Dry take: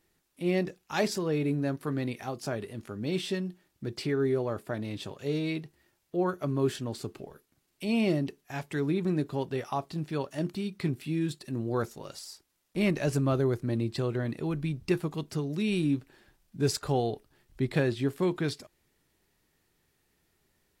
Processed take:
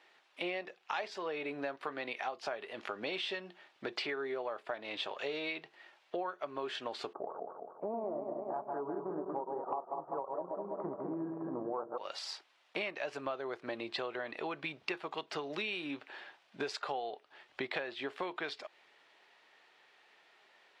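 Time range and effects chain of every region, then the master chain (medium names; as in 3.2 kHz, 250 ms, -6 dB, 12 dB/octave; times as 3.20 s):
7.13–11.98 s: backward echo that repeats 101 ms, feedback 73%, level -5 dB + steep low-pass 1.2 kHz 48 dB/octave
whole clip: Chebyshev band-pass 680–3200 Hz, order 2; compression 10:1, threshold -49 dBFS; trim +14 dB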